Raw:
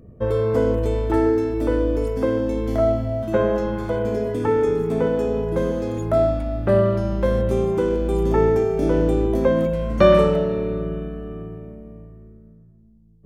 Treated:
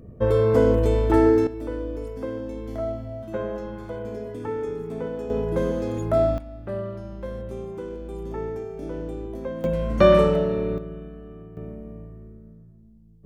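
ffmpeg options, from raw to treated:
-af "asetnsamples=n=441:p=0,asendcmd='1.47 volume volume -10dB;5.3 volume volume -2dB;6.38 volume volume -13.5dB;9.64 volume volume -1.5dB;10.78 volume volume -9dB;11.57 volume volume 1dB',volume=1.5dB"

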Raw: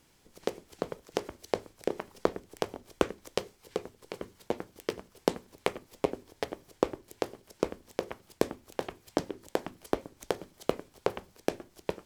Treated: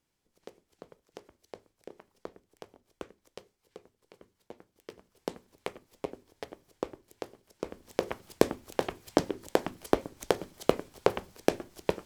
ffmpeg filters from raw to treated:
-af "volume=4.5dB,afade=t=in:st=4.75:d=0.66:silence=0.375837,afade=t=in:st=7.63:d=0.45:silence=0.251189"

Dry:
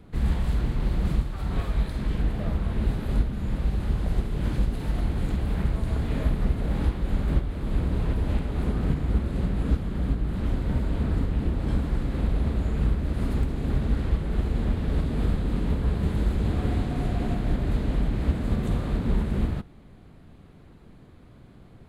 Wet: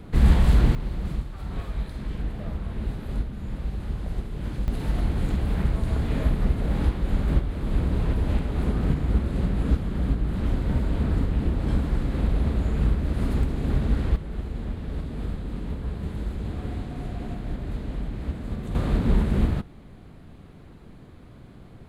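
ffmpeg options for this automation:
-af "asetnsamples=n=441:p=0,asendcmd='0.75 volume volume -4.5dB;4.68 volume volume 1.5dB;14.16 volume volume -6dB;18.75 volume volume 3.5dB',volume=7.5dB"

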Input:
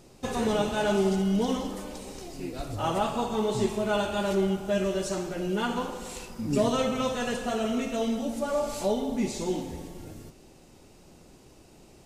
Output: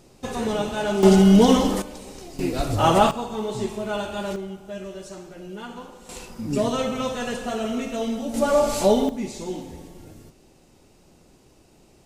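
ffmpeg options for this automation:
-af "asetnsamples=n=441:p=0,asendcmd='1.03 volume volume 12dB;1.82 volume volume 1dB;2.39 volume volume 10.5dB;3.11 volume volume -1dB;4.36 volume volume -8dB;6.09 volume volume 1.5dB;8.34 volume volume 9dB;9.09 volume volume -1.5dB',volume=1dB"

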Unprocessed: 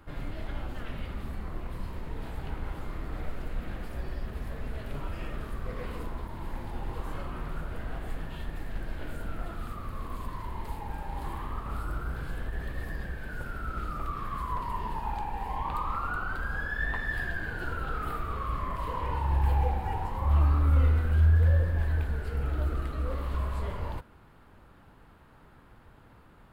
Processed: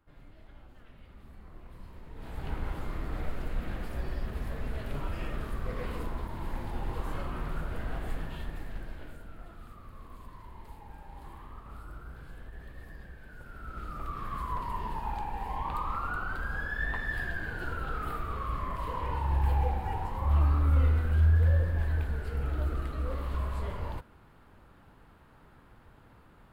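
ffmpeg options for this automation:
-af "volume=10.5dB,afade=t=in:st=0.98:d=1.16:silence=0.421697,afade=t=in:st=2.14:d=0.38:silence=0.298538,afade=t=out:st=8.11:d=1.13:silence=0.251189,afade=t=in:st=13.43:d=0.91:silence=0.334965"

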